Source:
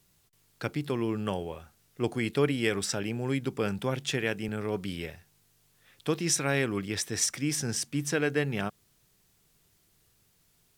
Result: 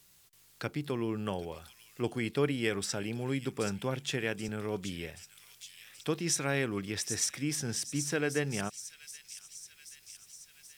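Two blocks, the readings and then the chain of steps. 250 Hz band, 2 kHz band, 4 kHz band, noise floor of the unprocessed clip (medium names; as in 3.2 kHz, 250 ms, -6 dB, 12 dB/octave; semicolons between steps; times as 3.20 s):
-3.5 dB, -3.5 dB, -3.0 dB, -68 dBFS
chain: feedback echo behind a high-pass 779 ms, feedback 46%, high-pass 4.6 kHz, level -6 dB; tape noise reduction on one side only encoder only; trim -3.5 dB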